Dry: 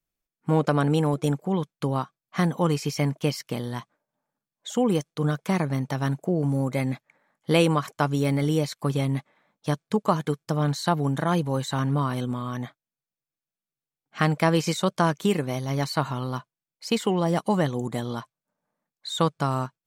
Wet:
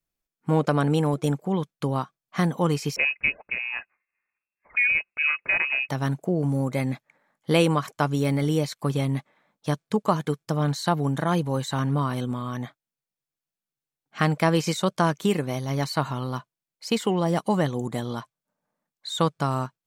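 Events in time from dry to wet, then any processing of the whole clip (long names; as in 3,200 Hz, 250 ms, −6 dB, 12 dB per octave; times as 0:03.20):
0:02.96–0:05.89: voice inversion scrambler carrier 2,700 Hz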